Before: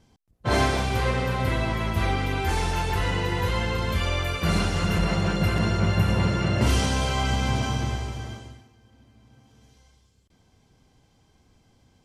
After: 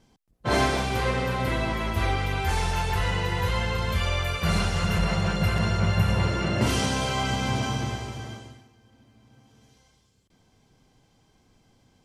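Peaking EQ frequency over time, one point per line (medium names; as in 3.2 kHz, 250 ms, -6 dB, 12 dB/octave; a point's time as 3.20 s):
peaking EQ -9.5 dB 0.63 oct
1.68 s 85 Hz
2.31 s 300 Hz
6.16 s 300 Hz
6.60 s 68 Hz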